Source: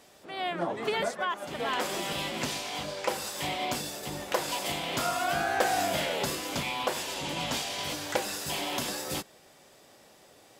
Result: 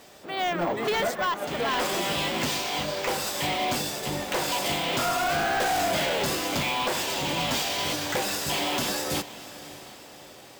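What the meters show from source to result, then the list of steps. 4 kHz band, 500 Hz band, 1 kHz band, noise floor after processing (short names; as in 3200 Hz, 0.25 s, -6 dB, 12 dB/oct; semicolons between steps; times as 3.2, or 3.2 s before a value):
+5.0 dB, +4.0 dB, +4.0 dB, -47 dBFS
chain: overloaded stage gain 29 dB; on a send: diffused feedback echo 0.611 s, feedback 49%, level -15.5 dB; on the sum: careless resampling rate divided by 2×, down filtered, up hold; gain +6.5 dB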